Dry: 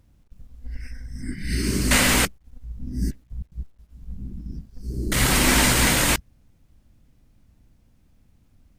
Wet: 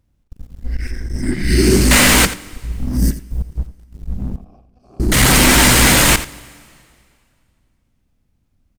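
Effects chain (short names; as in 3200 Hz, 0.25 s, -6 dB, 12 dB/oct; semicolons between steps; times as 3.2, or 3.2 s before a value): 2.71–3.47 high shelf 9200 Hz +12 dB; sample leveller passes 3; 0.82–1.76 bell 360 Hz +12 dB 0.28 oct; 4.36–5 vowel filter a; echo 85 ms -14 dB; on a send at -21 dB: reverb RT60 2.3 s, pre-delay 5 ms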